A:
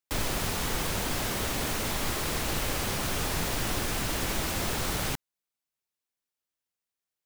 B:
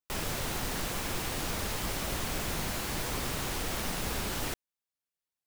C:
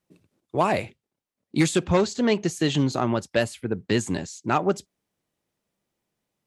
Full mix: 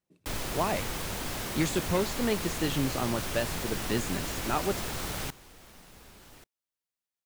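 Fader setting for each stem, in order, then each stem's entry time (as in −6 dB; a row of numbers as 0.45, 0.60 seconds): −4.5, −19.0, −7.5 decibels; 0.15, 1.90, 0.00 seconds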